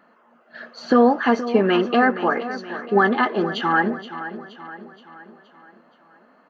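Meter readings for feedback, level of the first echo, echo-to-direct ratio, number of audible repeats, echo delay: 50%, -13.0 dB, -12.0 dB, 4, 473 ms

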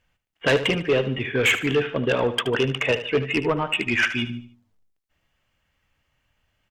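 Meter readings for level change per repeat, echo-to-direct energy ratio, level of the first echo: -9.0 dB, -11.5 dB, -12.0 dB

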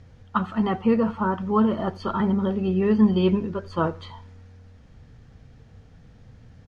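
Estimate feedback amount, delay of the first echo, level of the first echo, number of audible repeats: 38%, 87 ms, -24.0 dB, 2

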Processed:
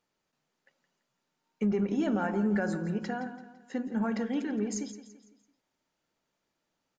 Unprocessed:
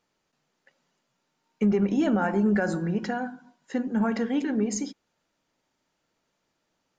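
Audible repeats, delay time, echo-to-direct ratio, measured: 3, 168 ms, -12.0 dB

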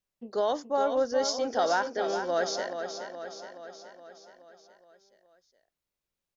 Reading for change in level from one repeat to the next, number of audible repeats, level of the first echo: -4.5 dB, 6, -8.0 dB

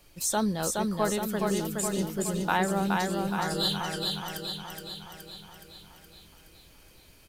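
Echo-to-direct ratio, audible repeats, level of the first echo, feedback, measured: -1.0 dB, 7, -3.0 dB, 58%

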